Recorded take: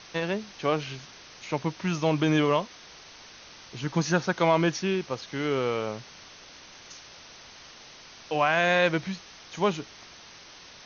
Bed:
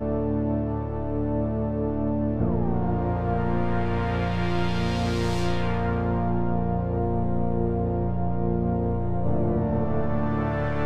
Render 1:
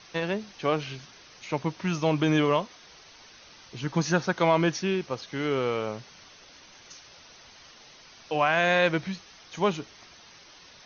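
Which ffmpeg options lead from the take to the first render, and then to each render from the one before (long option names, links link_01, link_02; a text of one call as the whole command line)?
ffmpeg -i in.wav -af "afftdn=noise_reduction=6:noise_floor=-49" out.wav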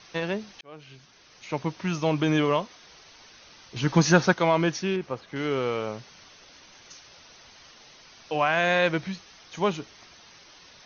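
ffmpeg -i in.wav -filter_complex "[0:a]asettb=1/sr,asplit=3[link_01][link_02][link_03];[link_01]atrim=end=3.764[link_04];[link_02]atrim=start=3.76:end=4.34,asetpts=PTS-STARTPTS,afade=type=in:duration=0.004:curve=qsin,afade=type=out:start_time=0.576:duration=0.004:curve=qsin,acontrast=64[link_05];[link_03]atrim=start=4.336[link_06];[link_04][link_05]acrossfade=duration=0.004:curve1=hsin:curve2=qsin[link_07];[link_07][link_06]acrossfade=duration=0.004:curve1=qsin:curve2=hsin,asettb=1/sr,asplit=3[link_08][link_09][link_10];[link_08]atrim=end=4.964[link_11];[link_09]atrim=start=4.96:end=5.36,asetpts=PTS-STARTPTS,afade=type=in:duration=0.004:curve=qsin,afade=type=out:start_time=0.396:duration=0.004:curve=qsin,acrossover=split=2600[link_12][link_13];[link_13]acompressor=threshold=-57dB:ratio=4:attack=1:release=60[link_14];[link_12][link_14]amix=inputs=2:normalize=0[link_15];[link_10]atrim=start=5.356[link_16];[link_11][link_15]acrossfade=duration=0.004:curve1=hsin:curve2=qsin[link_17];[link_17][link_16]acrossfade=duration=0.004:curve1=qsin:curve2=hsin,asplit=2[link_18][link_19];[link_18]atrim=end=0.61,asetpts=PTS-STARTPTS,afade=type=out:start_time=0.606:duration=0.004:curve=hsin[link_20];[link_19]atrim=start=0.61,asetpts=PTS-STARTPTS,afade=type=in:duration=1.01[link_21];[link_20][link_21]concat=n=2:v=0:a=1" out.wav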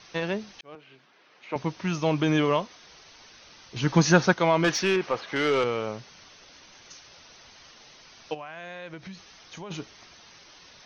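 ffmpeg -i in.wav -filter_complex "[0:a]asettb=1/sr,asplit=3[link_01][link_02][link_03];[link_01]atrim=end=0.754[link_04];[link_02]atrim=start=0.75:end=1.56,asetpts=PTS-STARTPTS,afade=type=in:duration=0.004:curve=qsin,afade=type=out:start_time=0.806:duration=0.004:curve=qsin,highpass=270,lowpass=2700[link_05];[link_03]atrim=start=1.556[link_06];[link_04][link_05]acrossfade=duration=0.004:curve1=hsin:curve2=qsin[link_07];[link_07][link_06]acrossfade=duration=0.004:curve1=qsin:curve2=hsin,asettb=1/sr,asplit=3[link_08][link_09][link_10];[link_08]atrim=end=4.644[link_11];[link_09]atrim=start=4.64:end=5.64,asetpts=PTS-STARTPTS,afade=type=in:duration=0.004:curve=qsin,afade=type=out:start_time=0.996:duration=0.004:curve=qsin,asplit=2[link_12][link_13];[link_13]highpass=frequency=720:poles=1,volume=17dB,asoftclip=type=tanh:threshold=-13.5dB[link_14];[link_12][link_14]amix=inputs=2:normalize=0,lowpass=frequency=4600:poles=1,volume=-6dB[link_15];[link_10]atrim=start=5.636[link_16];[link_11][link_15]acrossfade=duration=0.004:curve1=hsin:curve2=qsin[link_17];[link_17][link_16]acrossfade=duration=0.004:curve1=qsin:curve2=hsin,asplit=3[link_18][link_19][link_20];[link_18]afade=type=out:start_time=8.33:duration=0.02[link_21];[link_19]acompressor=threshold=-38dB:ratio=5:attack=3.2:release=140:knee=1:detection=peak,afade=type=in:start_time=8.33:duration=0.02,afade=type=out:start_time=9.7:duration=0.02[link_22];[link_20]afade=type=in:start_time=9.7:duration=0.02[link_23];[link_21][link_22][link_23]amix=inputs=3:normalize=0" out.wav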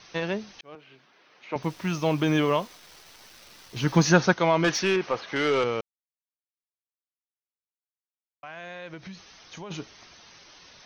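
ffmpeg -i in.wav -filter_complex "[0:a]asplit=3[link_01][link_02][link_03];[link_01]afade=type=out:start_time=1.62:duration=0.02[link_04];[link_02]acrusher=bits=9:dc=4:mix=0:aa=0.000001,afade=type=in:start_time=1.62:duration=0.02,afade=type=out:start_time=4.09:duration=0.02[link_05];[link_03]afade=type=in:start_time=4.09:duration=0.02[link_06];[link_04][link_05][link_06]amix=inputs=3:normalize=0,asplit=3[link_07][link_08][link_09];[link_07]atrim=end=5.81,asetpts=PTS-STARTPTS,afade=type=out:start_time=5.806:duration=0.004:curve=hsin[link_10];[link_08]atrim=start=5.81:end=8.43,asetpts=PTS-STARTPTS,volume=0[link_11];[link_09]atrim=start=8.43,asetpts=PTS-STARTPTS,afade=type=in:duration=0.004:curve=hsin[link_12];[link_10][link_11][link_12]concat=n=3:v=0:a=1" out.wav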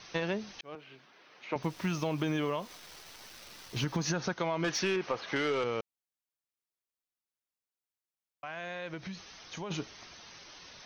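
ffmpeg -i in.wav -af "alimiter=limit=-16dB:level=0:latency=1:release=148,acompressor=threshold=-29dB:ratio=4" out.wav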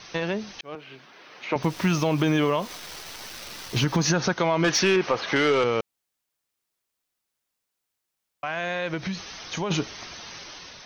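ffmpeg -i in.wav -filter_complex "[0:a]asplit=2[link_01][link_02];[link_02]alimiter=level_in=2.5dB:limit=-24dB:level=0:latency=1:release=68,volume=-2.5dB,volume=0.5dB[link_03];[link_01][link_03]amix=inputs=2:normalize=0,dynaudnorm=framelen=650:gausssize=3:maxgain=5dB" out.wav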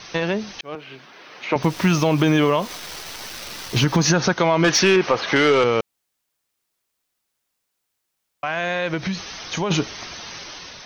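ffmpeg -i in.wav -af "volume=5dB" out.wav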